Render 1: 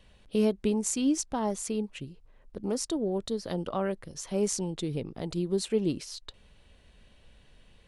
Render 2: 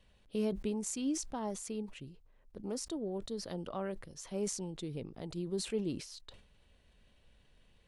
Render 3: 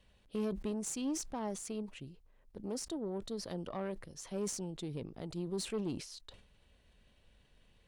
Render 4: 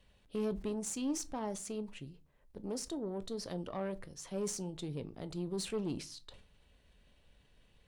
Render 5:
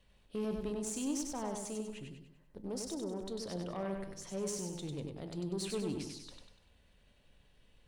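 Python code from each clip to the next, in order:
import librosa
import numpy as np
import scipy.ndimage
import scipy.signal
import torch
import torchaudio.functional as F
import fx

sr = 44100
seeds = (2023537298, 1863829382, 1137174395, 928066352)

y1 = fx.sustainer(x, sr, db_per_s=96.0)
y1 = F.gain(torch.from_numpy(y1), -8.5).numpy()
y2 = fx.tube_stage(y1, sr, drive_db=31.0, bias=0.35)
y2 = F.gain(torch.from_numpy(y2), 1.0).numpy()
y3 = fx.room_shoebox(y2, sr, seeds[0], volume_m3=120.0, walls='furnished', distance_m=0.31)
y4 = fx.echo_feedback(y3, sr, ms=97, feedback_pct=44, wet_db=-4.5)
y4 = F.gain(torch.from_numpy(y4), -1.5).numpy()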